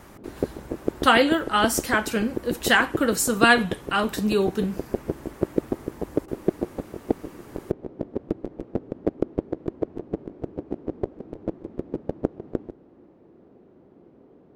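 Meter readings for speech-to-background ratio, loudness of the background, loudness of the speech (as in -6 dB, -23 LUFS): 10.0 dB, -32.0 LUFS, -22.0 LUFS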